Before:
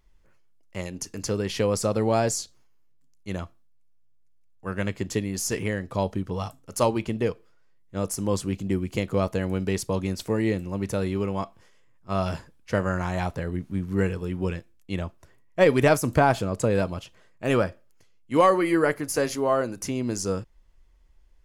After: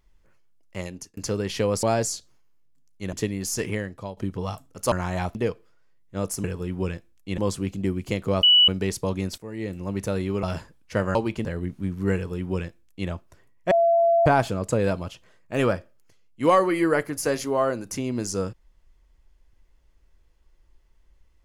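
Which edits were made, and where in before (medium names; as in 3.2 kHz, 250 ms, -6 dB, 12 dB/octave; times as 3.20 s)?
0.87–1.17 s: fade out
1.83–2.09 s: delete
3.39–5.06 s: delete
5.65–6.10 s: fade out, to -16 dB
6.85–7.15 s: swap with 12.93–13.36 s
9.29–9.54 s: bleep 2.95 kHz -12 dBFS
10.24–10.68 s: fade in quadratic, from -14 dB
11.29–12.21 s: delete
14.06–15.00 s: copy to 8.24 s
15.62–16.17 s: bleep 676 Hz -15.5 dBFS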